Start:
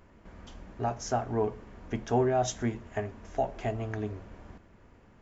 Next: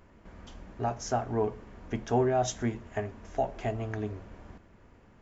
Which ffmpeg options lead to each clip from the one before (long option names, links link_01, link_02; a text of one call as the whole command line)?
ffmpeg -i in.wav -af anull out.wav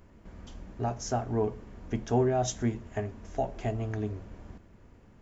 ffmpeg -i in.wav -af "equalizer=frequency=1400:width=0.33:gain=-6,volume=3dB" out.wav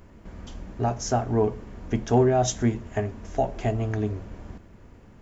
ffmpeg -i in.wav -af "asoftclip=type=hard:threshold=-17.5dB,volume=6dB" out.wav